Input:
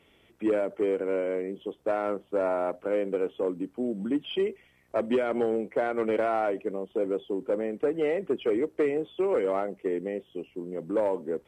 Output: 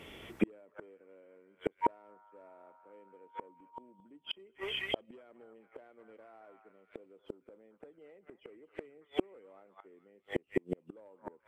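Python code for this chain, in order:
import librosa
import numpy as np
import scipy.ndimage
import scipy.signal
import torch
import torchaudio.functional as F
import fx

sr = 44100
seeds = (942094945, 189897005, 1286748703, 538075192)

y = fx.dmg_tone(x, sr, hz=940.0, level_db=-32.0, at=(1.81, 3.84), fade=0.02)
y = fx.echo_stepped(y, sr, ms=218, hz=1200.0, octaves=0.7, feedback_pct=70, wet_db=-2)
y = fx.gate_flip(y, sr, shuts_db=-26.0, range_db=-41)
y = y * 10.0 ** (11.0 / 20.0)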